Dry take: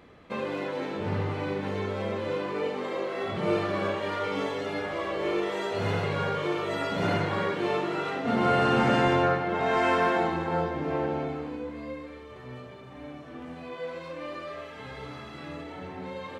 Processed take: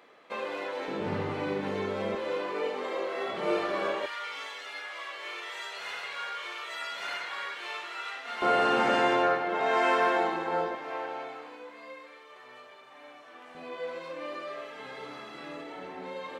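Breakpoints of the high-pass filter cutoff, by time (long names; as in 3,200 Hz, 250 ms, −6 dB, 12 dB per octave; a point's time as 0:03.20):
490 Hz
from 0:00.88 160 Hz
from 0:02.15 370 Hz
from 0:04.06 1,500 Hz
from 0:08.42 370 Hz
from 0:10.75 770 Hz
from 0:13.55 300 Hz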